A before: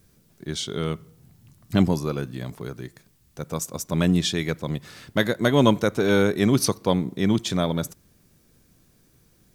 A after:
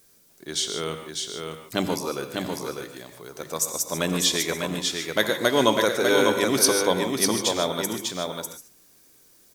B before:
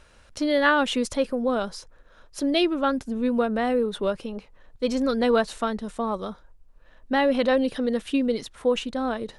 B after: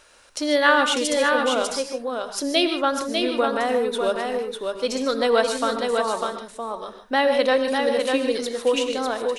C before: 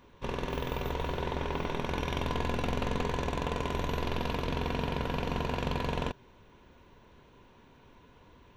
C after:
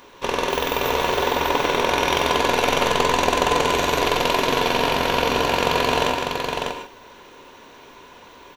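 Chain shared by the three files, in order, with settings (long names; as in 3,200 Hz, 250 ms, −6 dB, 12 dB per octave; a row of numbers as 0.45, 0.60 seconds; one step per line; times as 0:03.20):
bass and treble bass −15 dB, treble +6 dB
mains-hum notches 50/100/150/200 Hz
on a send: single-tap delay 598 ms −4.5 dB
on the sum: reverb whose tail is shaped and stops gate 170 ms rising, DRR 7 dB
normalise the peak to −3 dBFS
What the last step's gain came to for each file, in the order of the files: +1.0, +3.0, +13.5 decibels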